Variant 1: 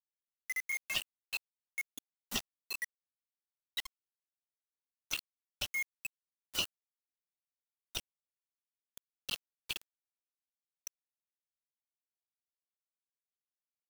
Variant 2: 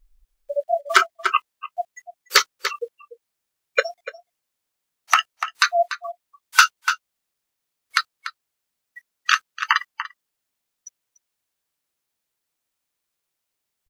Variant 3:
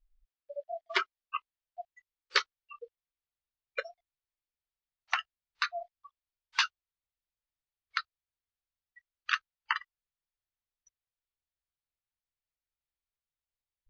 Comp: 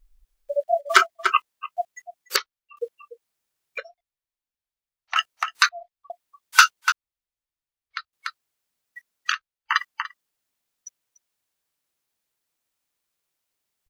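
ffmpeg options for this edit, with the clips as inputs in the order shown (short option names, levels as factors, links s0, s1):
-filter_complex "[2:a]asplit=5[s0][s1][s2][s3][s4];[1:a]asplit=6[s5][s6][s7][s8][s9][s10];[s5]atrim=end=2.362[s11];[s0]atrim=start=2.358:end=2.772[s12];[s6]atrim=start=2.768:end=3.782[s13];[s1]atrim=start=3.778:end=5.162[s14];[s7]atrim=start=5.158:end=5.692[s15];[s2]atrim=start=5.688:end=6.102[s16];[s8]atrim=start=6.098:end=6.922[s17];[s3]atrim=start=6.918:end=8.132[s18];[s9]atrim=start=8.128:end=9.34[s19];[s4]atrim=start=9.28:end=9.75[s20];[s10]atrim=start=9.69[s21];[s11][s12]acrossfade=d=0.004:c1=hsin:c2=hsin[s22];[s22][s13]acrossfade=d=0.004:c1=hsin:c2=hsin[s23];[s23][s14]acrossfade=d=0.004:c1=hsin:c2=hsin[s24];[s24][s15]acrossfade=d=0.004:c1=hsin:c2=hsin[s25];[s25][s16]acrossfade=d=0.004:c1=hsin:c2=hsin[s26];[s26][s17]acrossfade=d=0.004:c1=hsin:c2=hsin[s27];[s27][s18]acrossfade=d=0.004:c1=hsin:c2=hsin[s28];[s28][s19]acrossfade=d=0.004:c1=hsin:c2=hsin[s29];[s29][s20]acrossfade=d=0.06:c1=tri:c2=tri[s30];[s30][s21]acrossfade=d=0.06:c1=tri:c2=tri"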